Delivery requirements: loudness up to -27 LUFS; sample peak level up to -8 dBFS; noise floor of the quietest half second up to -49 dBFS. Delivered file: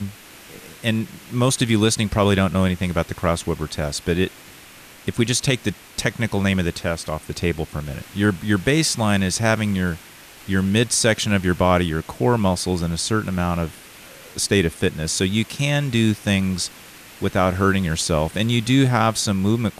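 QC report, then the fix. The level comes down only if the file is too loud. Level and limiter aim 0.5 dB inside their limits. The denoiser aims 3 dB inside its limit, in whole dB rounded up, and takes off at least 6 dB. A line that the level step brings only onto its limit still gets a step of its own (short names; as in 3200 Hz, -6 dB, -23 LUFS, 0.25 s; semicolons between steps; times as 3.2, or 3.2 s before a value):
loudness -21.0 LUFS: fail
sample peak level -5.5 dBFS: fail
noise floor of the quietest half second -44 dBFS: fail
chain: gain -6.5 dB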